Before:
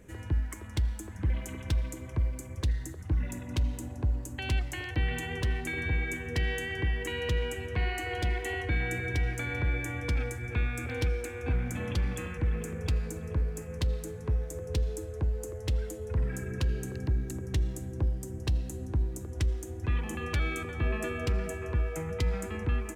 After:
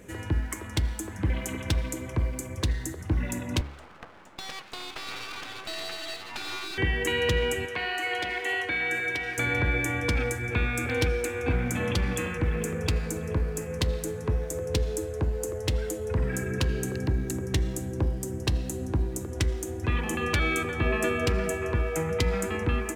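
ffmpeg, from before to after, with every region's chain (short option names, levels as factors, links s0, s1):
-filter_complex "[0:a]asettb=1/sr,asplit=3[s0][s1][s2];[s0]atrim=end=3.614[s3];[s1]atrim=start=3.61:end=6.78,asetpts=PTS-STARTPTS,afade=t=in:d=0.004:c=qsin,afade=t=out:st=3.166:d=0.004:c=qsin,highpass=580,lowpass=2000,aeval=exprs='abs(val(0))':c=same[s4];[s2]atrim=start=6.776[s5];[s3][s4]acrossfade=d=0.004:c1=hsin:c2=qsin[s6];[s6][s5]acrossfade=d=0.004:c1=qsin:c2=hsin,asettb=1/sr,asplit=3[s7][s8][s9];[s7]atrim=end=7.654[s10];[s8]atrim=start=7.65:end=9.38,asetpts=PTS-STARTPTS,afade=t=in:d=0.004:c=qsin,afade=t=out:st=1.726:d=0.004:c=qsin,acrossover=split=3900[s11][s12];[s12]acompressor=threshold=0.00355:ratio=4:attack=1:release=60[s13];[s11][s13]amix=inputs=2:normalize=0,highpass=f=800:p=1[s14];[s9]atrim=start=9.376[s15];[s10][s14]acrossfade=d=0.004:c1=hsin:c2=qsin[s16];[s16][s15]acrossfade=d=0.004:c1=qsin:c2=hsin,lowshelf=f=100:g=-10.5,bandreject=f=70.53:t=h:w=4,bandreject=f=141.06:t=h:w=4,bandreject=f=211.59:t=h:w=4,bandreject=f=282.12:t=h:w=4,bandreject=f=352.65:t=h:w=4,bandreject=f=423.18:t=h:w=4,bandreject=f=493.71:t=h:w=4,bandreject=f=564.24:t=h:w=4,bandreject=f=634.77:t=h:w=4,bandreject=f=705.3:t=h:w=4,bandreject=f=775.83:t=h:w=4,bandreject=f=846.36:t=h:w=4,bandreject=f=916.89:t=h:w=4,bandreject=f=987.42:t=h:w=4,bandreject=f=1057.95:t=h:w=4,bandreject=f=1128.48:t=h:w=4,bandreject=f=1199.01:t=h:w=4,bandreject=f=1269.54:t=h:w=4,bandreject=f=1340.07:t=h:w=4,bandreject=f=1410.6:t=h:w=4,bandreject=f=1481.13:t=h:w=4,bandreject=f=1551.66:t=h:w=4,bandreject=f=1622.19:t=h:w=4,bandreject=f=1692.72:t=h:w=4,bandreject=f=1763.25:t=h:w=4,bandreject=f=1833.78:t=h:w=4,bandreject=f=1904.31:t=h:w=4,bandreject=f=1974.84:t=h:w=4,bandreject=f=2045.37:t=h:w=4,bandreject=f=2115.9:t=h:w=4,bandreject=f=2186.43:t=h:w=4,bandreject=f=2256.96:t=h:w=4,volume=2.66"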